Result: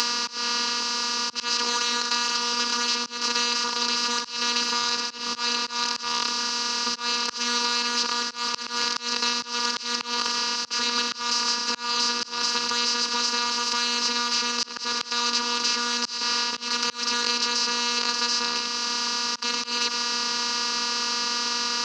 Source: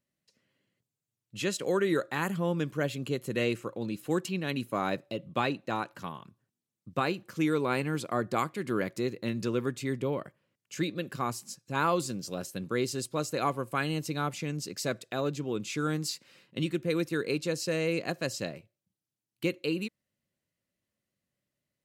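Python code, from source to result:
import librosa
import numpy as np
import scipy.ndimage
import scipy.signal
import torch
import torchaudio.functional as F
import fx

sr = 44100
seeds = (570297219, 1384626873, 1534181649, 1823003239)

p1 = fx.bin_compress(x, sr, power=0.2)
p2 = fx.leveller(p1, sr, passes=1)
p3 = fx.curve_eq(p2, sr, hz=(120.0, 200.0, 340.0, 650.0, 960.0, 3600.0, 5900.0, 9200.0), db=(0, -26, -13, -21, -3, -10, 9, -21))
p4 = p3 + fx.echo_single(p3, sr, ms=97, db=-13.0, dry=0)
p5 = fx.robotise(p4, sr, hz=240.0)
p6 = scipy.signal.sosfilt(scipy.signal.butter(2, 74.0, 'highpass', fs=sr, output='sos'), p5)
p7 = fx.band_shelf(p6, sr, hz=3600.0, db=11.5, octaves=1.0)
p8 = fx.notch(p7, sr, hz=730.0, q=21.0)
p9 = fx.auto_swell(p8, sr, attack_ms=340.0)
y = fx.band_squash(p9, sr, depth_pct=100)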